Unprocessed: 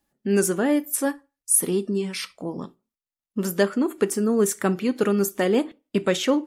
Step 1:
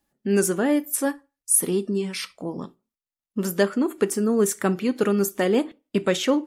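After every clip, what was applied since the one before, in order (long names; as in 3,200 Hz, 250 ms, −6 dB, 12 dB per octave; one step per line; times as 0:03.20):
no processing that can be heard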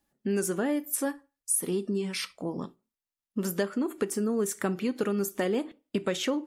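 downward compressor 3 to 1, threshold −24 dBFS, peak gain reduction 8 dB
level −2 dB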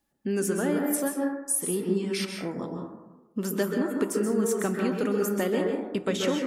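dense smooth reverb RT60 1.1 s, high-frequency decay 0.25×, pre-delay 120 ms, DRR 1 dB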